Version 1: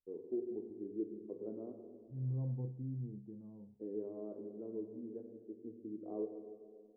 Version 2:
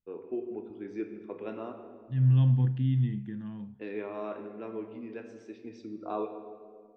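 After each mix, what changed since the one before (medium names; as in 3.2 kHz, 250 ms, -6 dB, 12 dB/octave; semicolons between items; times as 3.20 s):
second voice: add graphic EQ 125/250/500/1000/2000 Hz +8/+8/-5/-6/+6 dB; master: remove four-pole ladder low-pass 540 Hz, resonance 30%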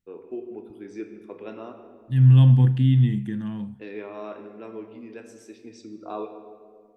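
second voice +8.5 dB; master: remove distance through air 190 m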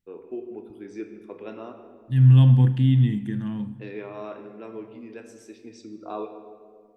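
second voice: send on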